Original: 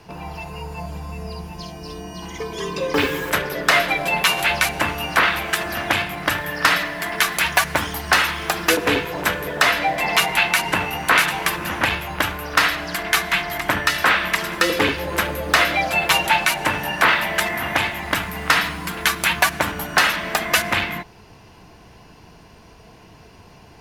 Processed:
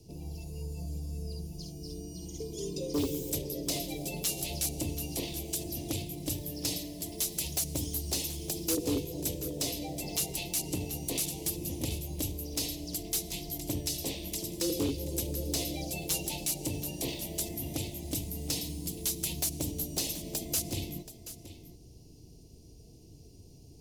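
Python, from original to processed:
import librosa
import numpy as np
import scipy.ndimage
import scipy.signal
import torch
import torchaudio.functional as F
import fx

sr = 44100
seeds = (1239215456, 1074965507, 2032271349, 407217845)

p1 = scipy.signal.sosfilt(scipy.signal.cheby1(2, 1.0, [290.0, 6500.0], 'bandstop', fs=sr, output='sos'), x)
p2 = fx.peak_eq(p1, sr, hz=200.0, db=-11.0, octaves=0.43)
p3 = np.clip(p2, -10.0 ** (-22.0 / 20.0), 10.0 ** (-22.0 / 20.0))
p4 = p3 + fx.echo_single(p3, sr, ms=729, db=-14.0, dry=0)
y = p4 * 10.0 ** (-2.5 / 20.0)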